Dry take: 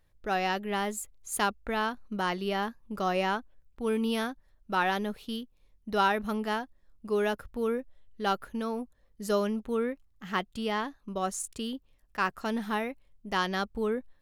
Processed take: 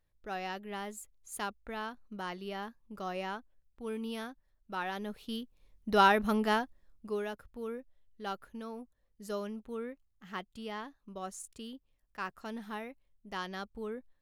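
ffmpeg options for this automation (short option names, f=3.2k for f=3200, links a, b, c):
-af "volume=2dB,afade=t=in:st=4.92:d=1:silence=0.266073,afade=t=out:st=6.58:d=0.67:silence=0.251189"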